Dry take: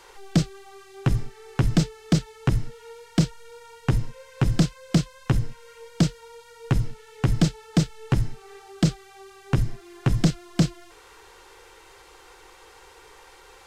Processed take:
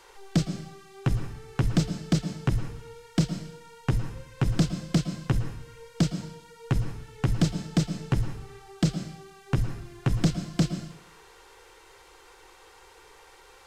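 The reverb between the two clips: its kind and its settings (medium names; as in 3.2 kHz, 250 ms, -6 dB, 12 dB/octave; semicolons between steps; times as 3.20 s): plate-style reverb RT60 0.69 s, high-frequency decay 1×, pre-delay 100 ms, DRR 9.5 dB; trim -3.5 dB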